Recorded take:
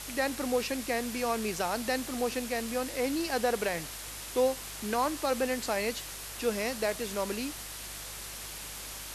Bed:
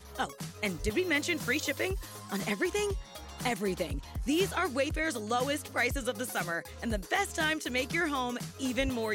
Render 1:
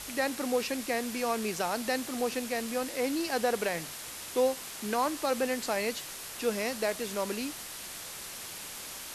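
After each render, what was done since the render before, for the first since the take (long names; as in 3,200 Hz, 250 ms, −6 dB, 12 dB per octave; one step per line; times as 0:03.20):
hum removal 50 Hz, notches 3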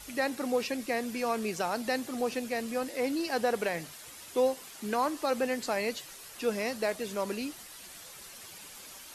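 broadband denoise 9 dB, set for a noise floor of −43 dBFS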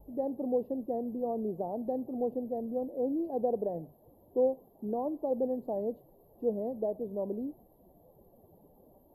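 inverse Chebyshev band-stop filter 1,300–9,400 Hz, stop band 40 dB
high-shelf EQ 4,000 Hz −10.5 dB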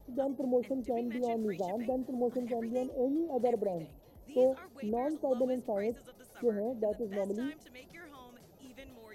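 mix in bed −21 dB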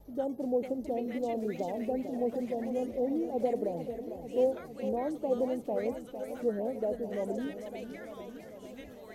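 feedback echo with a swinging delay time 450 ms, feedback 69%, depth 121 cents, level −10 dB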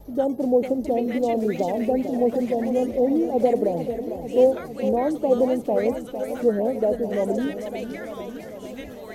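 level +10.5 dB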